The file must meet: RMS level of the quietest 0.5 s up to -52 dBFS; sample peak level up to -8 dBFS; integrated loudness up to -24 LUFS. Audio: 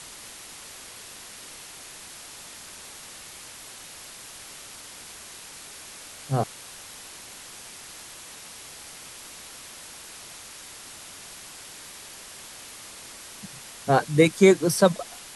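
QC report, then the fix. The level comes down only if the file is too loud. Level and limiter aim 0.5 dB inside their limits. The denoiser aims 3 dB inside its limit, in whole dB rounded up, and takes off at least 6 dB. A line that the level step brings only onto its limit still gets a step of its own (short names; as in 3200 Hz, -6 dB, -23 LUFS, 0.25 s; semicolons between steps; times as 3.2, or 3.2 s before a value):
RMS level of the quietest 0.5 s -43 dBFS: fail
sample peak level -4.5 dBFS: fail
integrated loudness -22.0 LUFS: fail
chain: denoiser 10 dB, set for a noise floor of -43 dBFS; gain -2.5 dB; limiter -8.5 dBFS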